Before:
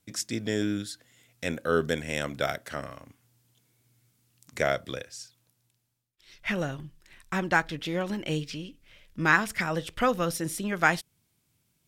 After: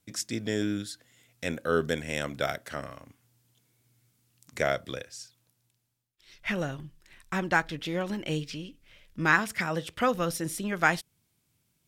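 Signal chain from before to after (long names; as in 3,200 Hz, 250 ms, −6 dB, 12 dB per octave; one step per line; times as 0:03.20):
0:09.39–0:10.15: high-pass filter 63 Hz
level −1 dB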